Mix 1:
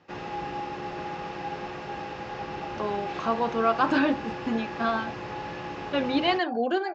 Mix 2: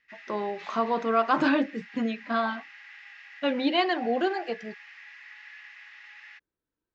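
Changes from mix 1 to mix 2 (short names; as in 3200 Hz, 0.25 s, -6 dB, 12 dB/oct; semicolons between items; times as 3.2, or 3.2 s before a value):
speech: entry -2.50 s; background: add ladder high-pass 1800 Hz, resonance 75%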